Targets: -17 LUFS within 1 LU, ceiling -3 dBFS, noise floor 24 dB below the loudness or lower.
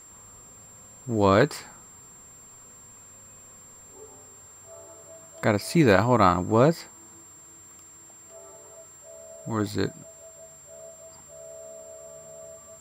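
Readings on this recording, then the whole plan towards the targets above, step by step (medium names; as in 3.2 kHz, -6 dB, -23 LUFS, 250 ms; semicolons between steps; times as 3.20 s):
steady tone 7.4 kHz; tone level -47 dBFS; loudness -23.0 LUFS; peak level -5.0 dBFS; loudness target -17.0 LUFS
-> band-stop 7.4 kHz, Q 30; trim +6 dB; peak limiter -3 dBFS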